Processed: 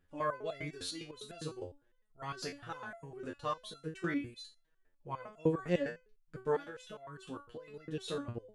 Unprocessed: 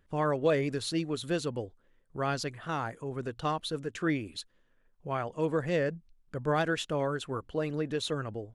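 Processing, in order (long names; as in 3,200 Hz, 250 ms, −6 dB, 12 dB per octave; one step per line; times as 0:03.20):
0:06.55–0:07.74: downward compressor, threshold −34 dBFS, peak gain reduction 9.5 dB
step-sequenced resonator 9.9 Hz 89–680 Hz
level +5 dB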